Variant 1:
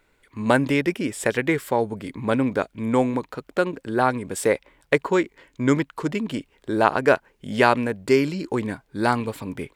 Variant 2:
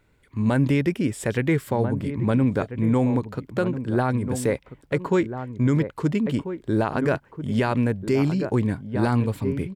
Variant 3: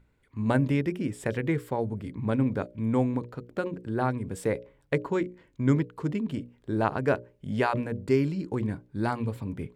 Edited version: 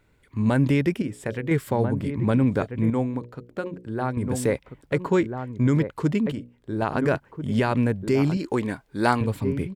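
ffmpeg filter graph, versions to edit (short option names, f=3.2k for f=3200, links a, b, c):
-filter_complex "[2:a]asplit=3[a][b][c];[1:a]asplit=5[d][e][f][g][h];[d]atrim=end=1.022[i];[a]atrim=start=1.018:end=1.512[j];[e]atrim=start=1.508:end=2.902[k];[b]atrim=start=2.898:end=4.172[l];[f]atrim=start=4.168:end=6.322[m];[c]atrim=start=6.318:end=6.822[n];[g]atrim=start=6.818:end=8.372[o];[0:a]atrim=start=8.368:end=9.212[p];[h]atrim=start=9.208[q];[i][j]acrossfade=d=0.004:c1=hsin:c2=hsin[r];[r][k]acrossfade=d=0.004:c1=hsin:c2=hsin[s];[s][l]acrossfade=d=0.004:c1=hsin:c2=hsin[t];[t][m]acrossfade=d=0.004:c1=hsin:c2=hsin[u];[u][n]acrossfade=d=0.004:c1=hsin:c2=hsin[v];[v][o]acrossfade=d=0.004:c1=hsin:c2=hsin[w];[w][p]acrossfade=d=0.004:c1=hsin:c2=hsin[x];[x][q]acrossfade=d=0.004:c1=hsin:c2=hsin"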